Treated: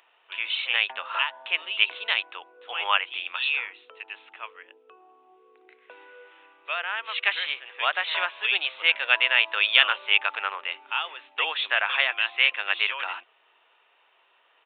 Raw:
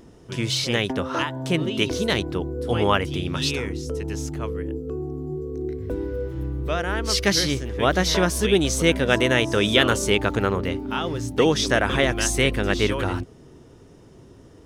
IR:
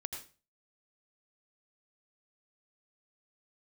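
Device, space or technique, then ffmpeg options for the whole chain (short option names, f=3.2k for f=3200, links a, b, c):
musical greeting card: -af "aresample=8000,aresample=44100,highpass=f=840:w=0.5412,highpass=f=840:w=1.3066,equalizer=f=2.6k:t=o:w=0.36:g=10,volume=-1.5dB"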